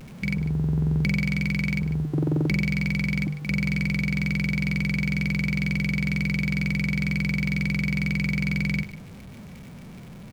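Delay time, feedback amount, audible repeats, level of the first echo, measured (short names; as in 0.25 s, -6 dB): 0.149 s, no steady repeat, 1, -15.0 dB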